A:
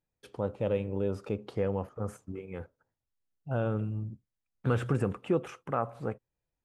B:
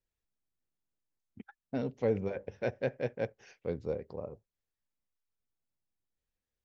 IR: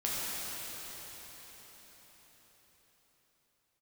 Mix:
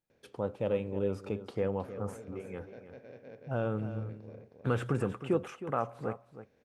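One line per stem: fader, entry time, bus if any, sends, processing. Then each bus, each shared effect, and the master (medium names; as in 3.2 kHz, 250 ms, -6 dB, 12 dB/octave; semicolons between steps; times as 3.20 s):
-1.0 dB, 0.00 s, no send, echo send -12.5 dB, bass shelf 70 Hz -10 dB
-12.5 dB, 0.10 s, no send, echo send -12.5 dB, spectral levelling over time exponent 0.4; auto duck -10 dB, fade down 0.35 s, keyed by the first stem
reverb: none
echo: delay 315 ms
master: none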